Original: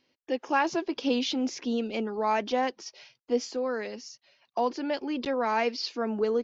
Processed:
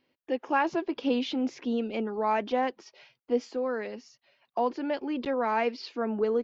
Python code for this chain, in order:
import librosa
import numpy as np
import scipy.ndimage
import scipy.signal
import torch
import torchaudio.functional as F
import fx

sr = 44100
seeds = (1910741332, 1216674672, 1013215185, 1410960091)

y = fx.peak_eq(x, sr, hz=5900.0, db=-12.0, octaves=1.2)